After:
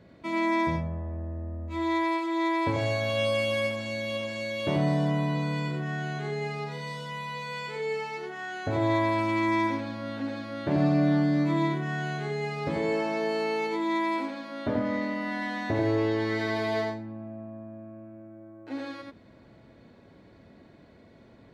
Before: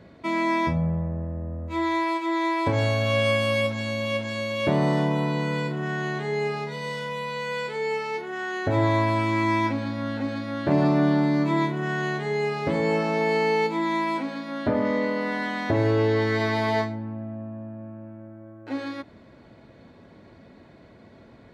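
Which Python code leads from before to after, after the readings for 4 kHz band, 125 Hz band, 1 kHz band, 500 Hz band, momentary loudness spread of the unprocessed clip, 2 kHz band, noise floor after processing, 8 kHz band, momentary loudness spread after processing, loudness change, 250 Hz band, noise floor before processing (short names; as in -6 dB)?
-3.5 dB, -4.0 dB, -4.0 dB, -4.5 dB, 12 LU, -4.0 dB, -54 dBFS, n/a, 12 LU, -3.5 dB, -3.0 dB, -51 dBFS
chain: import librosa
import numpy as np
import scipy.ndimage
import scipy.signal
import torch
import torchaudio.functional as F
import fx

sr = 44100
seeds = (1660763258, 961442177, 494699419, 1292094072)

y = fx.peak_eq(x, sr, hz=1100.0, db=-2.0, octaves=1.7)
y = y + 10.0 ** (-3.5 / 20.0) * np.pad(y, (int(88 * sr / 1000.0), 0))[:len(y)]
y = F.gain(torch.from_numpy(y), -5.0).numpy()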